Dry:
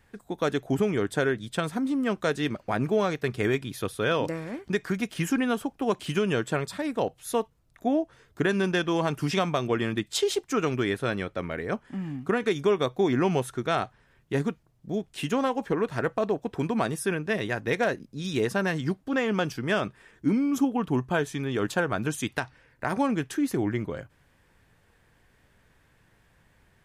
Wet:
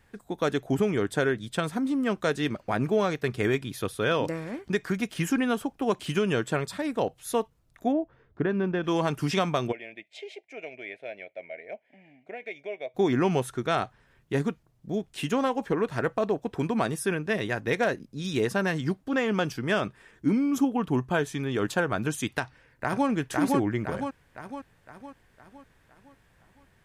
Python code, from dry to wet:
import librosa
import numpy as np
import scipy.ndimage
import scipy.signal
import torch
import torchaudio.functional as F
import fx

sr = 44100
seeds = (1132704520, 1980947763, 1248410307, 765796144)

y = fx.spacing_loss(x, sr, db_at_10k=41, at=(7.91, 8.83), fade=0.02)
y = fx.double_bandpass(y, sr, hz=1200.0, octaves=1.8, at=(9.71, 12.94), fade=0.02)
y = fx.echo_throw(y, sr, start_s=22.41, length_s=0.67, ms=510, feedback_pct=50, wet_db=-1.0)